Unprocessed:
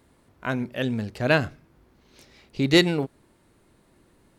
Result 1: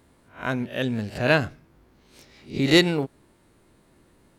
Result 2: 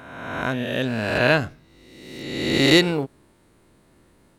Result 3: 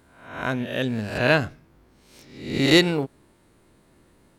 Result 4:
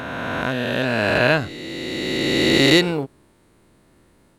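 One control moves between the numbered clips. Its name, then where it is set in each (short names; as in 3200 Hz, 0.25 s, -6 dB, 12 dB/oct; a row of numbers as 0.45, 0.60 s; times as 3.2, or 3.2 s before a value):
spectral swells, rising 60 dB in: 0.32, 1.38, 0.66, 3.19 s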